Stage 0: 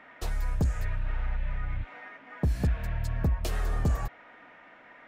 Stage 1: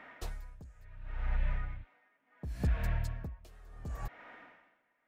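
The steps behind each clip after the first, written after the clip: dB-linear tremolo 0.7 Hz, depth 26 dB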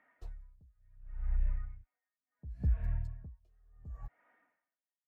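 spectral expander 1.5:1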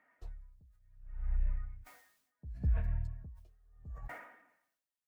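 sustainer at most 69 dB/s; gain -1 dB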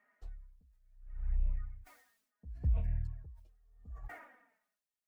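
envelope flanger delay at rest 4.9 ms, full sweep at -27 dBFS

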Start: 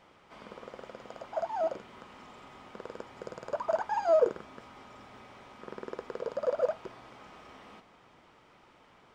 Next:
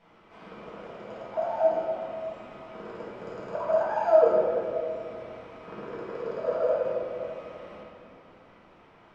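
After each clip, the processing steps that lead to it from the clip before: high shelf 5000 Hz -11 dB; reverb RT60 2.3 s, pre-delay 4 ms, DRR -8.5 dB; gain -4.5 dB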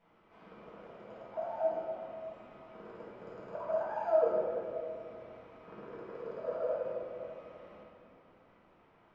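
high shelf 3800 Hz -7.5 dB; gain -8.5 dB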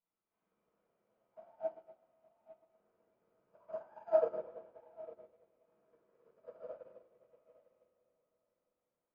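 on a send: darkening echo 0.854 s, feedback 24%, low-pass 1000 Hz, level -6 dB; on the sum: upward expander 2.5:1, over -43 dBFS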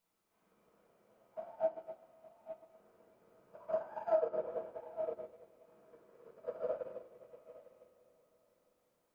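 compressor 4:1, threshold -41 dBFS, peak gain reduction 15.5 dB; gain +10.5 dB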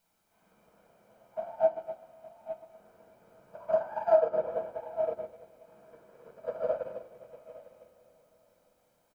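comb 1.3 ms, depth 41%; gain +7 dB

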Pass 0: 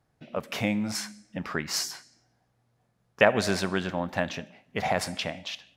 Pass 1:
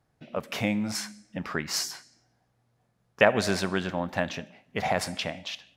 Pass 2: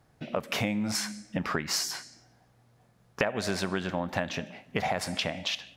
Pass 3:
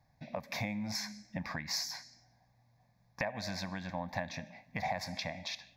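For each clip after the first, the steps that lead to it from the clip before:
nothing audible
compressor 5:1, threshold -35 dBFS, peak gain reduction 18.5 dB; gain +8 dB
fixed phaser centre 2000 Hz, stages 8; gain -4.5 dB

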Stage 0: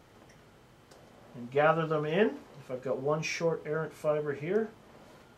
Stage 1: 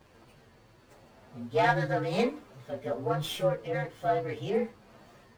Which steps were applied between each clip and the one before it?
inharmonic rescaling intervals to 115%; running maximum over 3 samples; gain +3 dB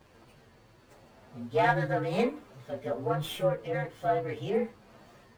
dynamic EQ 5200 Hz, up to -7 dB, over -54 dBFS, Q 1.4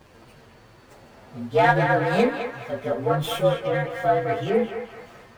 narrowing echo 0.212 s, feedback 54%, band-pass 1500 Hz, level -4 dB; gain +7 dB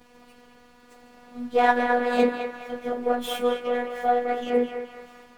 robotiser 244 Hz

